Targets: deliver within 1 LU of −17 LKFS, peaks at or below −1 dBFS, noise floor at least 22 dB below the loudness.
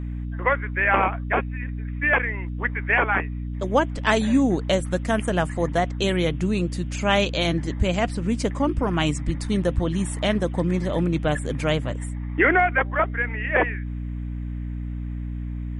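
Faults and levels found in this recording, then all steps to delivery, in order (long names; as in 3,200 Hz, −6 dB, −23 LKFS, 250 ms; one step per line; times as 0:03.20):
mains hum 60 Hz; hum harmonics up to 300 Hz; level of the hum −27 dBFS; integrated loudness −23.5 LKFS; sample peak −6.0 dBFS; target loudness −17.0 LKFS
→ hum removal 60 Hz, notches 5
level +6.5 dB
brickwall limiter −1 dBFS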